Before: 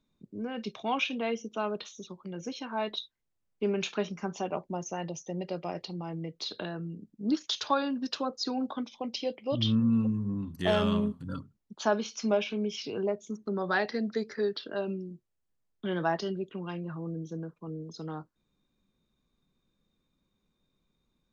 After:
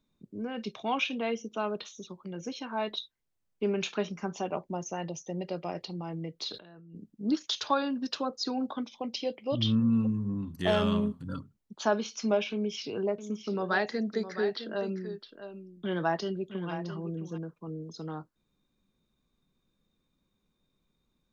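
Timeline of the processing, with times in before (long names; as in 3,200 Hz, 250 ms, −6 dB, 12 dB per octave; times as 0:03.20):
0:06.52–0:06.95: compressor whose output falls as the input rises −50 dBFS
0:12.52–0:17.38: single-tap delay 661 ms −11 dB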